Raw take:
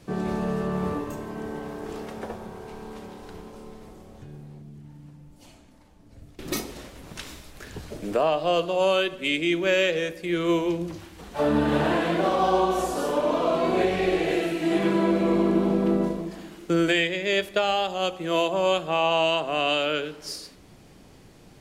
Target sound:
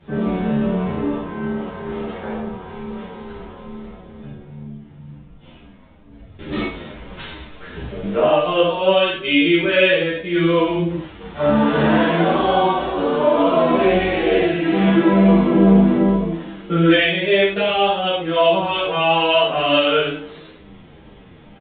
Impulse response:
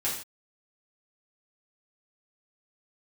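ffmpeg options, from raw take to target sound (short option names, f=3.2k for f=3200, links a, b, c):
-filter_complex "[0:a]aresample=8000,aresample=44100[a];[1:a]atrim=start_sample=2205,atrim=end_sample=3528,asetrate=25578,aresample=44100[b];[a][b]afir=irnorm=-1:irlink=0,asplit=2[c][d];[d]adelay=9.1,afreqshift=-2.2[e];[c][e]amix=inputs=2:normalize=1"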